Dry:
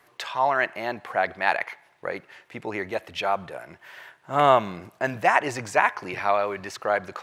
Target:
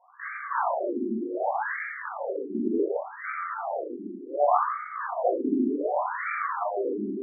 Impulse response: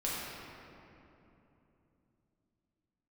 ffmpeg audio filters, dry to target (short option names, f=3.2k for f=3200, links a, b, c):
-filter_complex "[0:a]acompressor=threshold=-35dB:ratio=2,equalizer=f=240:t=o:w=1.2:g=11,bandreject=f=60:t=h:w=6,bandreject=f=120:t=h:w=6,bandreject=f=180:t=h:w=6,bandreject=f=240:t=h:w=6,bandreject=f=300:t=h:w=6[a];[1:a]atrim=start_sample=2205[b];[a][b]afir=irnorm=-1:irlink=0,afftfilt=real='re*between(b*sr/1024,280*pow(1700/280,0.5+0.5*sin(2*PI*0.67*pts/sr))/1.41,280*pow(1700/280,0.5+0.5*sin(2*PI*0.67*pts/sr))*1.41)':imag='im*between(b*sr/1024,280*pow(1700/280,0.5+0.5*sin(2*PI*0.67*pts/sr))/1.41,280*pow(1700/280,0.5+0.5*sin(2*PI*0.67*pts/sr))*1.41)':win_size=1024:overlap=0.75,volume=3.5dB"